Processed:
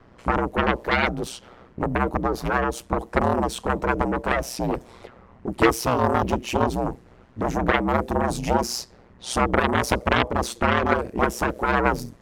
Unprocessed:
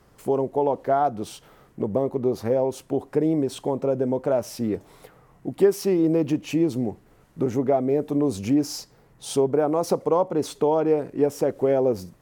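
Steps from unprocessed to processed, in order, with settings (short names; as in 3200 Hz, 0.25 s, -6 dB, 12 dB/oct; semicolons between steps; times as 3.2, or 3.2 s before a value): added harmonics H 6 -14 dB, 7 -6 dB, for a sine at -7.5 dBFS; low-pass opened by the level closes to 2900 Hz, open at -20.5 dBFS; ring modulator 61 Hz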